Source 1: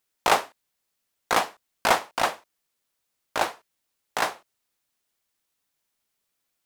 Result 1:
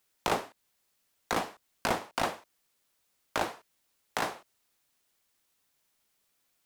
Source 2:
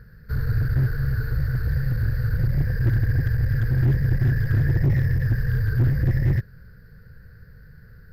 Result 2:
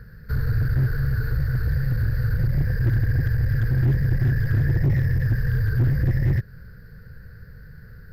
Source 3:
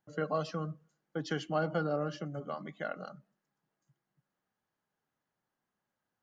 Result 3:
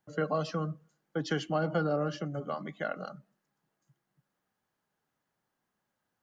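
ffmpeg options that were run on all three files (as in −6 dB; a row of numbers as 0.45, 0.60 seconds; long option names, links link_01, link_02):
-filter_complex "[0:a]acrossover=split=380[link_01][link_02];[link_02]acompressor=threshold=-31dB:ratio=4[link_03];[link_01][link_03]amix=inputs=2:normalize=0,asplit=2[link_04][link_05];[link_05]alimiter=limit=-22dB:level=0:latency=1:release=130,volume=3dB[link_06];[link_04][link_06]amix=inputs=2:normalize=0,volume=-4dB"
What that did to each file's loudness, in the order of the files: −7.5, 0.0, +3.0 LU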